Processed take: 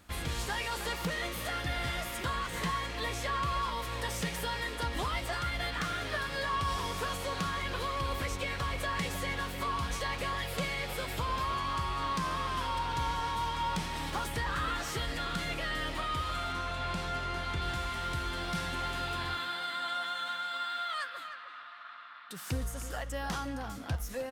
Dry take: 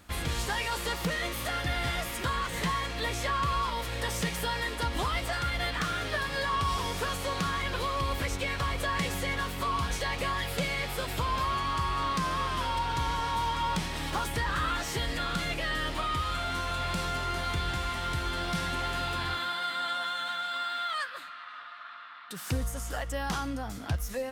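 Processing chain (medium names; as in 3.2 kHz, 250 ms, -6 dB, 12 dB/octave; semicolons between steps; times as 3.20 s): 16.52–17.62 s: treble shelf 7.7 kHz -10 dB; speakerphone echo 310 ms, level -9 dB; trim -3.5 dB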